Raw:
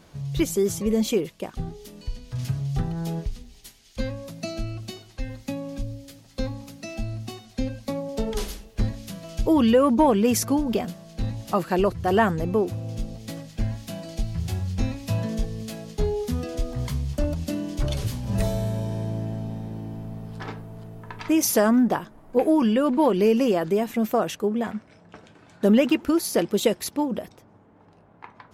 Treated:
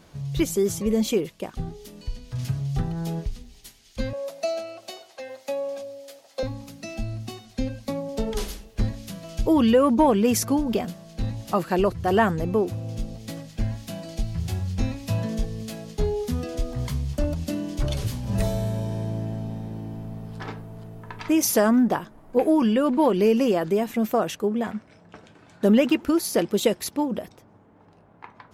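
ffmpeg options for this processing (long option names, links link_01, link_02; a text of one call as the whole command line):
ffmpeg -i in.wav -filter_complex "[0:a]asettb=1/sr,asplit=3[link_01][link_02][link_03];[link_01]atrim=end=4.134[link_04];[link_02]atrim=start=4.13:end=6.43,asetpts=PTS-STARTPTS,afade=type=in:duration=0.004:curve=qsin,afade=type=out:start_time=2.296:duration=0.004:curve=qsin,highpass=frequency=590:width_type=q:width=3.3[link_05];[link_03]atrim=start=6.426[link_06];[link_04][link_05]acrossfade=duration=0.004:curve1=hsin:curve2=qsin[link_07];[link_07][link_06]acrossfade=duration=0.004:curve1=qsin:curve2=hsin" out.wav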